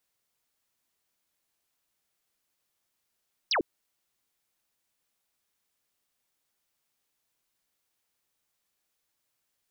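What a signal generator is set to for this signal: laser zap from 6000 Hz, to 270 Hz, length 0.10 s sine, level -23 dB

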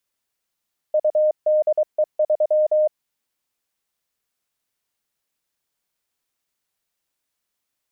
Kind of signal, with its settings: Morse "UDE3" 23 wpm 613 Hz -14 dBFS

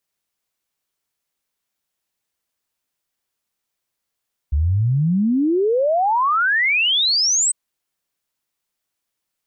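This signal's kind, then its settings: log sweep 68 Hz -> 8300 Hz 3.00 s -14.5 dBFS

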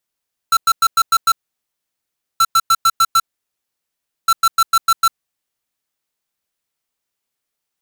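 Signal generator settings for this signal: beep pattern square 1340 Hz, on 0.05 s, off 0.10 s, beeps 6, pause 1.08 s, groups 3, -11.5 dBFS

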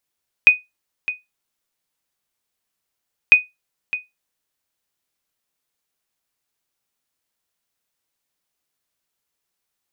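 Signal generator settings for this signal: sonar ping 2490 Hz, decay 0.19 s, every 2.85 s, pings 2, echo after 0.61 s, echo -14.5 dB -1 dBFS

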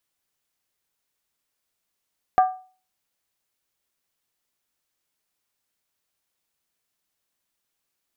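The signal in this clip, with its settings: skin hit, lowest mode 746 Hz, decay 0.39 s, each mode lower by 10 dB, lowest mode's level -10 dB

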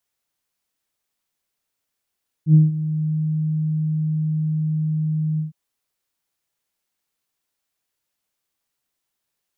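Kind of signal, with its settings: synth note saw D#3 24 dB/oct, low-pass 160 Hz, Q 2.6, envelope 0.5 oct, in 0.64 s, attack 81 ms, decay 0.17 s, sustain -16 dB, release 0.13 s, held 2.93 s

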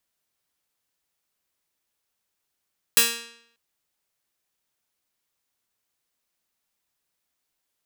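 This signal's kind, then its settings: plucked string A#3, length 0.59 s, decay 0.71 s, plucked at 0.31, bright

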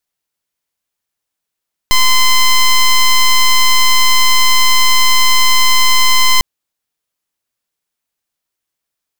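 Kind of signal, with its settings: pulse 1030 Hz, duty 10% -8 dBFS 4.50 s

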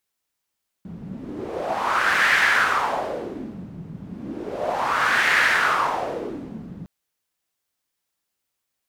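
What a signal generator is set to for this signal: wind-like swept noise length 6.01 s, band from 170 Hz, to 1800 Hz, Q 3.6, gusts 2, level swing 19 dB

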